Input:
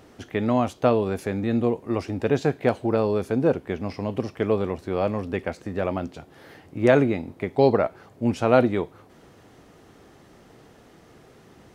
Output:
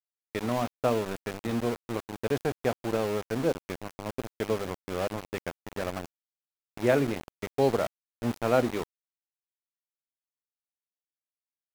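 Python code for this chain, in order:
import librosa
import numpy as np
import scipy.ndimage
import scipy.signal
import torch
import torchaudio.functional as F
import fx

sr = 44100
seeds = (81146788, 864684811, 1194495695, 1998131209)

y = fx.hum_notches(x, sr, base_hz=50, count=7)
y = np.where(np.abs(y) >= 10.0 ** (-25.5 / 20.0), y, 0.0)
y = F.gain(torch.from_numpy(y), -6.0).numpy()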